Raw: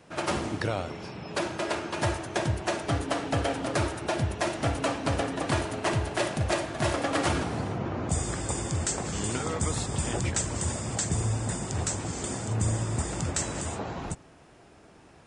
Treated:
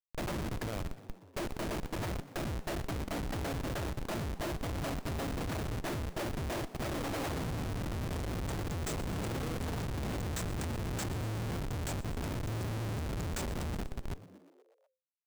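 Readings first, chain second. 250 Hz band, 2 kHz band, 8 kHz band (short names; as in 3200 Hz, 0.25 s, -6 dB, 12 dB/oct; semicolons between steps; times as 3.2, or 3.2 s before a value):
-6.0 dB, -9.0 dB, -13.5 dB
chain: Schmitt trigger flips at -28 dBFS; frequency-shifting echo 0.121 s, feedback 65%, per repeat +86 Hz, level -18 dB; gain -5.5 dB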